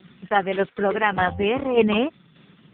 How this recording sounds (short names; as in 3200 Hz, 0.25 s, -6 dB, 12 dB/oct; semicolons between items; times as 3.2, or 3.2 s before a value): tremolo saw down 1.7 Hz, depth 55%; AMR-NB